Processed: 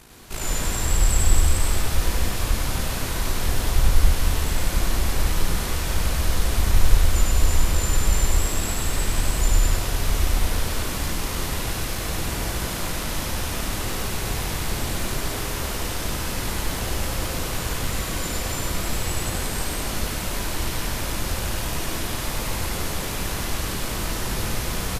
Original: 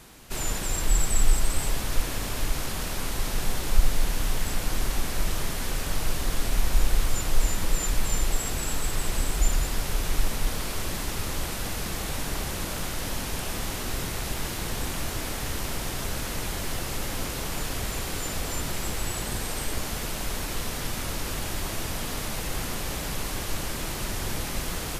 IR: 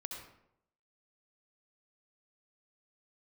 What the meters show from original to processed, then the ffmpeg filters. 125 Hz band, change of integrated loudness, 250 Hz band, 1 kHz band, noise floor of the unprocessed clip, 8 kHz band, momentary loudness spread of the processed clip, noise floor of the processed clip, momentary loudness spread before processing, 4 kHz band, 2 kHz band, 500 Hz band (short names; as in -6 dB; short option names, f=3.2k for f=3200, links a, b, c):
+7.0 dB, +4.5 dB, +4.0 dB, +4.5 dB, -33 dBFS, +3.5 dB, 5 LU, -29 dBFS, 4 LU, +4.0 dB, +4.0 dB, +4.0 dB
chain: -filter_complex "[0:a]tremolo=f=55:d=0.71,asplit=2[a][b];[b]adelay=27,volume=-13dB[c];[a][c]amix=inputs=2:normalize=0,asplit=2[d][e];[1:a]atrim=start_sample=2205,adelay=100[f];[e][f]afir=irnorm=-1:irlink=0,volume=3.5dB[g];[d][g]amix=inputs=2:normalize=0,volume=3dB"